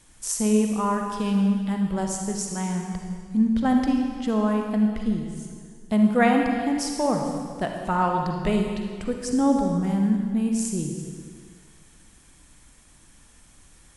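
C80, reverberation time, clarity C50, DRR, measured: 4.0 dB, 1.9 s, 2.5 dB, 2.0 dB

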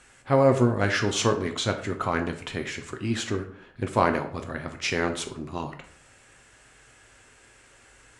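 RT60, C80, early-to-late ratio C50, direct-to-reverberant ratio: 0.55 s, 14.5 dB, 11.0 dB, 5.0 dB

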